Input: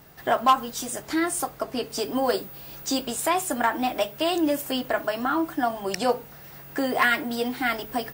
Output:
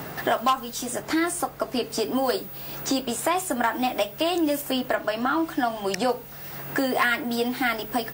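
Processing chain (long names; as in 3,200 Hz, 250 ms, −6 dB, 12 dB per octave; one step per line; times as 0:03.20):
0:04.95–0:05.94: high-shelf EQ 6,500 Hz −11 dB
multiband upward and downward compressor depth 70%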